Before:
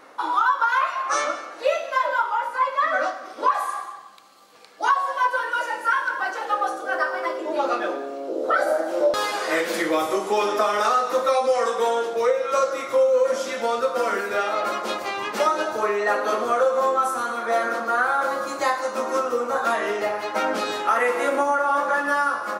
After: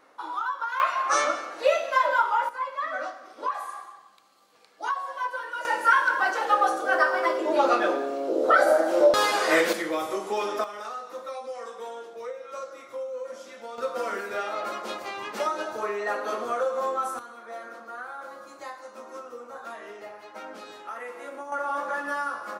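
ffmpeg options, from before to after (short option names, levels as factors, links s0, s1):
-af "asetnsamples=n=441:p=0,asendcmd='0.8 volume volume 0dB;2.49 volume volume -9dB;5.65 volume volume 2dB;9.73 volume volume -6.5dB;10.64 volume volume -16dB;13.78 volume volume -7dB;17.19 volume volume -17dB;21.52 volume volume -8dB',volume=0.316"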